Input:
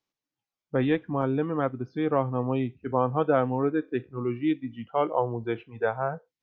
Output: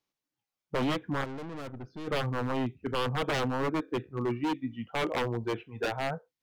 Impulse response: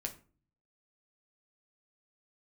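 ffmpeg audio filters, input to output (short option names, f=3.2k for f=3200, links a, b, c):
-filter_complex "[0:a]asplit=3[a][b][c];[a]afade=t=out:st=1.23:d=0.02[d];[b]aeval=exprs='(tanh(79.4*val(0)+0.65)-tanh(0.65))/79.4':c=same,afade=t=in:st=1.23:d=0.02,afade=t=out:st=2.07:d=0.02[e];[c]afade=t=in:st=2.07:d=0.02[f];[d][e][f]amix=inputs=3:normalize=0,aeval=exprs='0.0668*(abs(mod(val(0)/0.0668+3,4)-2)-1)':c=same"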